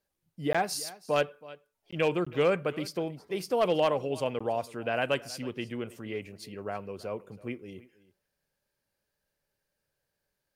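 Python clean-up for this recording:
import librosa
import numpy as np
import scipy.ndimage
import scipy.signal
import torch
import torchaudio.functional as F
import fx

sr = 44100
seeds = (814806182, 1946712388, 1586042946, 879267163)

y = fx.fix_declip(x, sr, threshold_db=-16.5)
y = fx.fix_interpolate(y, sr, at_s=(0.53, 1.91, 2.25, 4.39), length_ms=15.0)
y = fx.fix_echo_inverse(y, sr, delay_ms=323, level_db=-20.0)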